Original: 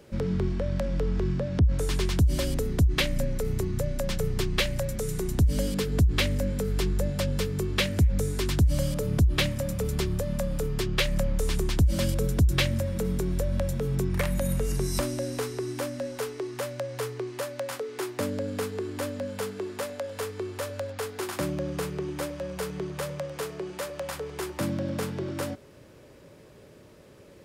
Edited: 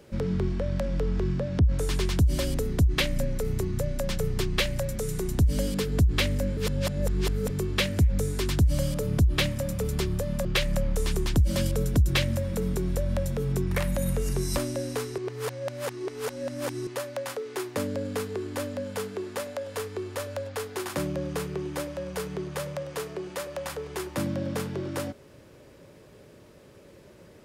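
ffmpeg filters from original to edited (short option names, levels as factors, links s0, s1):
-filter_complex "[0:a]asplit=6[s0][s1][s2][s3][s4][s5];[s0]atrim=end=6.572[s6];[s1]atrim=start=6.568:end=7.502,asetpts=PTS-STARTPTS,areverse[s7];[s2]atrim=start=7.498:end=10.452[s8];[s3]atrim=start=10.878:end=15.612[s9];[s4]atrim=start=15.608:end=17.302,asetpts=PTS-STARTPTS,areverse[s10];[s5]atrim=start=17.298[s11];[s6][s7]acrossfade=d=0.004:c1=hsin:c2=hsin[s12];[s12][s8]acrossfade=d=0.004:c1=hsin:c2=hsin[s13];[s13][s9]acrossfade=d=0.004:c1=hsin:c2=hsin[s14];[s14][s10]acrossfade=d=0.004:c1=hsin:c2=hsin[s15];[s15][s11]acrossfade=d=0.004:c1=hsin:c2=hsin"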